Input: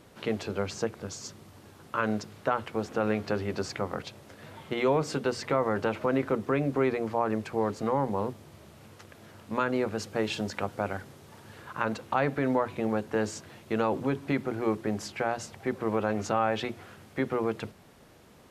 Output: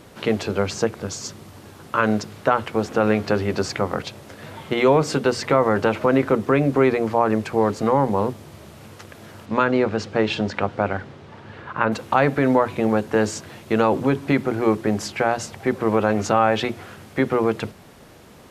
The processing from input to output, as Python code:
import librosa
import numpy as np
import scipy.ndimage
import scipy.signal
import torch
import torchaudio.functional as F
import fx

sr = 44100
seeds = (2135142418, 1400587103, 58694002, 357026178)

y = fx.lowpass(x, sr, hz=fx.line((9.45, 5400.0), (11.91, 2800.0)), slope=12, at=(9.45, 11.91), fade=0.02)
y = y * 10.0 ** (9.0 / 20.0)